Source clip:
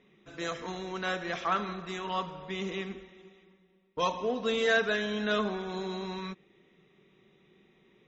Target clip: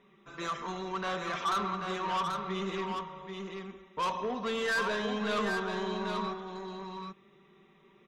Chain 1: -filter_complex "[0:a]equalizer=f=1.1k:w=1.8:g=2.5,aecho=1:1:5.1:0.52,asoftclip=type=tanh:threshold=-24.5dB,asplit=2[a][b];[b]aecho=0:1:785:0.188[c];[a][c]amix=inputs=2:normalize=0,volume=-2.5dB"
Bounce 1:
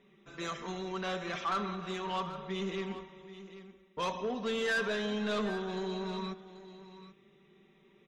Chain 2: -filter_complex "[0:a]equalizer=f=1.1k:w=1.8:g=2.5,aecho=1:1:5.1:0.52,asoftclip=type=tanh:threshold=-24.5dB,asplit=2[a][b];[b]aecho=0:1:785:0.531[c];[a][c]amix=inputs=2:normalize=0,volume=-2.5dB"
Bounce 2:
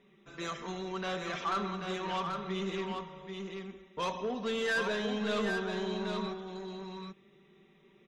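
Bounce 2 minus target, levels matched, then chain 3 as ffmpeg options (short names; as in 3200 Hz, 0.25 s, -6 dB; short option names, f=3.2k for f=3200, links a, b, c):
1000 Hz band -3.0 dB
-filter_complex "[0:a]equalizer=f=1.1k:w=1.8:g=11,aecho=1:1:5.1:0.52,asoftclip=type=tanh:threshold=-24.5dB,asplit=2[a][b];[b]aecho=0:1:785:0.531[c];[a][c]amix=inputs=2:normalize=0,volume=-2.5dB"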